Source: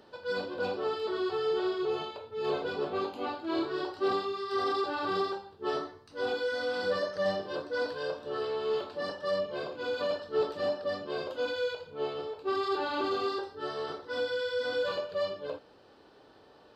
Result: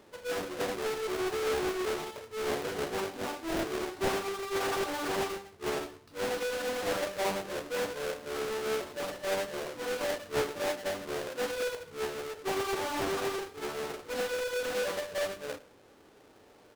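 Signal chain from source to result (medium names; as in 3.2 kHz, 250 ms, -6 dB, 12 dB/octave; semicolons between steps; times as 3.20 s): square wave that keeps the level; delay 107 ms -21 dB; loudspeaker Doppler distortion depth 0.8 ms; trim -5 dB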